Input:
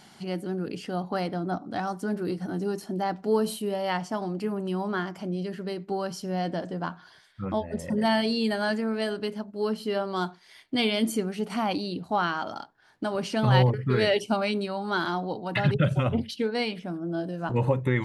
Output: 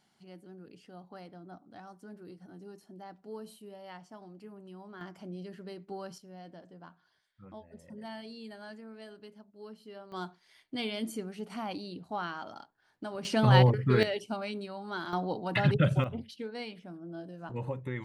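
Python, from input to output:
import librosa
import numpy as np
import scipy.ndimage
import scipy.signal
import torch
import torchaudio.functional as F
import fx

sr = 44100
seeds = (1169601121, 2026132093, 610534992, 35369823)

y = fx.gain(x, sr, db=fx.steps((0.0, -19.0), (5.01, -11.0), (6.18, -19.5), (10.12, -10.0), (13.25, -0.5), (14.03, -10.0), (15.13, -2.0), (16.04, -12.0)))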